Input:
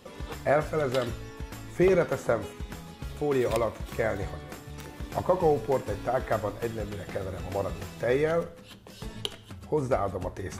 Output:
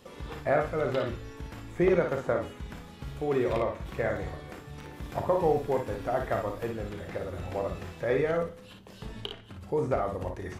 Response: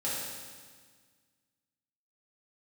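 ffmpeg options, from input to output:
-filter_complex "[0:a]acrossover=split=3800[link_01][link_02];[link_02]acompressor=threshold=-59dB:ratio=6[link_03];[link_01][link_03]amix=inputs=2:normalize=0,asettb=1/sr,asplit=3[link_04][link_05][link_06];[link_04]atrim=end=4.924[link_07];[link_05]atrim=start=4.92:end=6.67,asetpts=PTS-STARTPTS,afade=type=in:duration=0.004:curve=qsin,afade=type=out:start_time=1.746:duration=0.004:curve=qsin,highshelf=frequency=10000:gain=7[link_08];[link_06]atrim=start=6.666[link_09];[link_07][link_08]acrossfade=duration=0.004:curve1=hsin:curve2=qsin[link_10];[link_10][link_09]acrossfade=duration=0.004:curve1=qsin:curve2=hsin,aecho=1:1:35|57:0.316|0.501,volume=-2.5dB"

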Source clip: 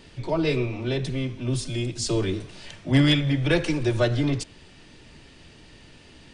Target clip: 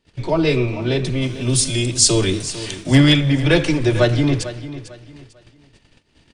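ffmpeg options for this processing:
ffmpeg -i in.wav -filter_complex "[0:a]agate=range=-27dB:threshold=-46dB:ratio=16:detection=peak,asplit=3[link_01][link_02][link_03];[link_01]afade=type=out:start_time=1.21:duration=0.02[link_04];[link_02]aemphasis=mode=production:type=75kf,afade=type=in:start_time=1.21:duration=0.02,afade=type=out:start_time=2.94:duration=0.02[link_05];[link_03]afade=type=in:start_time=2.94:duration=0.02[link_06];[link_04][link_05][link_06]amix=inputs=3:normalize=0,aecho=1:1:448|896|1344:0.2|0.0579|0.0168,volume=6.5dB" out.wav

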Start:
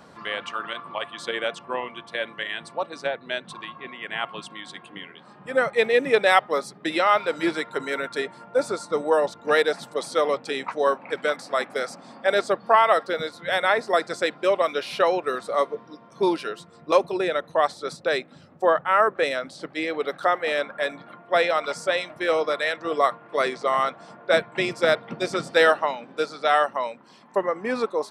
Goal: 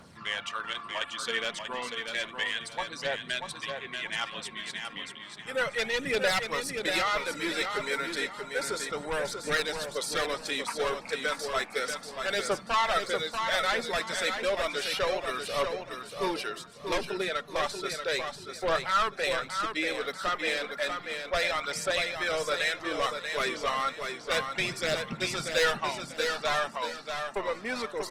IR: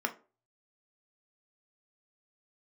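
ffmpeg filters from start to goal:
-filter_complex "[0:a]asoftclip=type=tanh:threshold=-17.5dB,equalizer=frequency=530:width=0.31:gain=-12,aphaser=in_gain=1:out_gain=1:delay=5:decay=0.41:speed=0.32:type=triangular,aecho=1:1:637|1274|1911|2548:0.501|0.15|0.0451|0.0135,asplit=2[link_01][link_02];[1:a]atrim=start_sample=2205[link_03];[link_02][link_03]afir=irnorm=-1:irlink=0,volume=-22dB[link_04];[link_01][link_04]amix=inputs=2:normalize=0,volume=3dB" -ar 48000 -c:a libopus -b:a 24k

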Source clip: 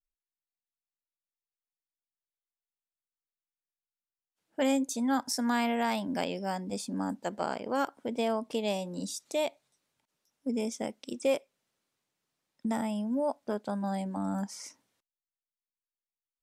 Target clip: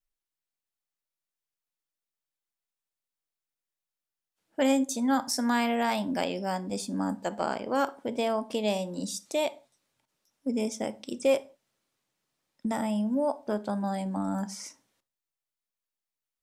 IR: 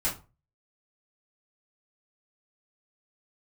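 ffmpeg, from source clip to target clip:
-filter_complex "[0:a]asplit=2[link_01][link_02];[1:a]atrim=start_sample=2205,atrim=end_sample=6174,asetrate=31311,aresample=44100[link_03];[link_02][link_03]afir=irnorm=-1:irlink=0,volume=-22dB[link_04];[link_01][link_04]amix=inputs=2:normalize=0,volume=2dB"

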